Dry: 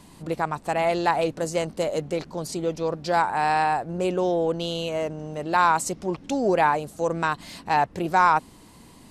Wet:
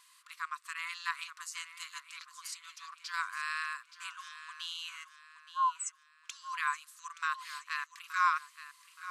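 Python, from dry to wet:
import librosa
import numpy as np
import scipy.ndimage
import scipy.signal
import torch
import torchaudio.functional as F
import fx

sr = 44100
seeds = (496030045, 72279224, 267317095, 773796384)

p1 = fx.spec_expand(x, sr, power=3.6, at=(5.03, 6.24), fade=0.02)
p2 = fx.brickwall_highpass(p1, sr, low_hz=1000.0)
p3 = p2 + fx.echo_feedback(p2, sr, ms=873, feedback_pct=40, wet_db=-13, dry=0)
y = F.gain(torch.from_numpy(p3), -6.5).numpy()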